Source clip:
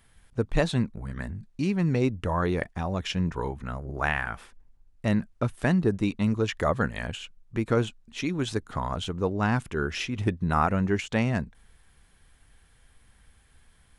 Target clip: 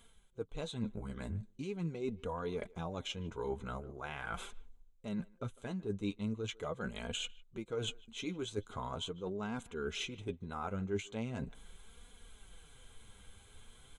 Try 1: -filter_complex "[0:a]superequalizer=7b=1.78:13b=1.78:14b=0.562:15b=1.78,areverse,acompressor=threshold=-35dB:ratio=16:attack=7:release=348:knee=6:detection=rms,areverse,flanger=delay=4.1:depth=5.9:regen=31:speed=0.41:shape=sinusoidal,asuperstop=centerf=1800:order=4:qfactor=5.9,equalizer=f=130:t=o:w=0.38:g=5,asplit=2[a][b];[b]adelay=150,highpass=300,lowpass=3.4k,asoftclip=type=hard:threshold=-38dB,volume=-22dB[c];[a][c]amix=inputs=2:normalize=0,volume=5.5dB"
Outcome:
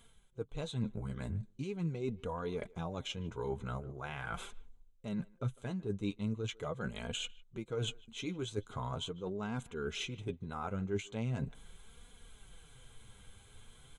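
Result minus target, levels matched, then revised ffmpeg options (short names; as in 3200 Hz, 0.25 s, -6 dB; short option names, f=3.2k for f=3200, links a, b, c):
125 Hz band +3.0 dB
-filter_complex "[0:a]superequalizer=7b=1.78:13b=1.78:14b=0.562:15b=1.78,areverse,acompressor=threshold=-35dB:ratio=16:attack=7:release=348:knee=6:detection=rms,areverse,flanger=delay=4.1:depth=5.9:regen=31:speed=0.41:shape=sinusoidal,asuperstop=centerf=1800:order=4:qfactor=5.9,equalizer=f=130:t=o:w=0.38:g=-4,asplit=2[a][b];[b]adelay=150,highpass=300,lowpass=3.4k,asoftclip=type=hard:threshold=-38dB,volume=-22dB[c];[a][c]amix=inputs=2:normalize=0,volume=5.5dB"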